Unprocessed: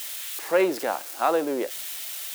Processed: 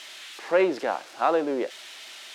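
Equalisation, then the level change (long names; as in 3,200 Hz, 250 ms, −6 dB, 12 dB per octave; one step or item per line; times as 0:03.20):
low-pass filter 4,300 Hz 12 dB per octave
0.0 dB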